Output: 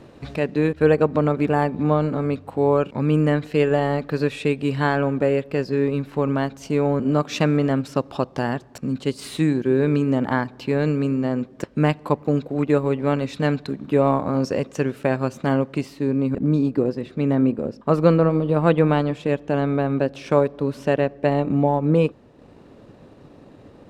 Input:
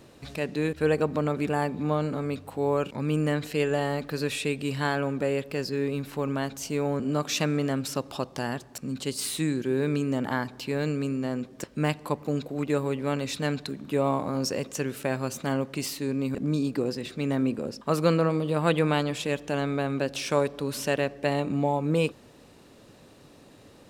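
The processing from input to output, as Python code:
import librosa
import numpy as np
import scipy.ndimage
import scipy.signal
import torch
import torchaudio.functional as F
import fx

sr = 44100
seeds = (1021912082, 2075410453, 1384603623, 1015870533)

y = fx.lowpass(x, sr, hz=fx.steps((0.0, 1800.0), (15.81, 1000.0)), slope=6)
y = fx.transient(y, sr, attack_db=1, sustain_db=-5)
y = y * librosa.db_to_amplitude(7.5)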